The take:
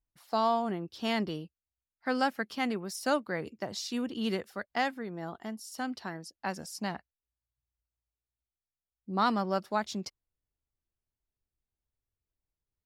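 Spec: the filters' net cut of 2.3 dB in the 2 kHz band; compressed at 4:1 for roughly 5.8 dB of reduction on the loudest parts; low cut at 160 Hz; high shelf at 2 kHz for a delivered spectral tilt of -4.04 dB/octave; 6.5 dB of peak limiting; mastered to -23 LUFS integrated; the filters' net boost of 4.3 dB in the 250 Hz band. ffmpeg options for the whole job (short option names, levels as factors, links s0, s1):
-af "highpass=160,equalizer=f=250:t=o:g=6,highshelf=f=2000:g=6,equalizer=f=2000:t=o:g=-6.5,acompressor=threshold=0.0398:ratio=4,volume=4.22,alimiter=limit=0.266:level=0:latency=1"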